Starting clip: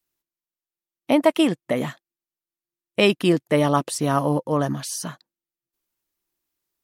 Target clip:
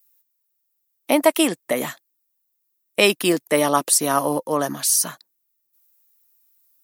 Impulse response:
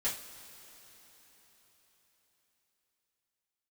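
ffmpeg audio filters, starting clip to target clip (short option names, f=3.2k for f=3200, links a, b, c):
-filter_complex "[0:a]aemphasis=mode=production:type=bsi,acrossover=split=150|4800[a][b][c];[a]acompressor=threshold=-52dB:ratio=6[d];[d][b][c]amix=inputs=3:normalize=0,equalizer=f=3.1k:w=4.8:g=-3,volume=2.5dB"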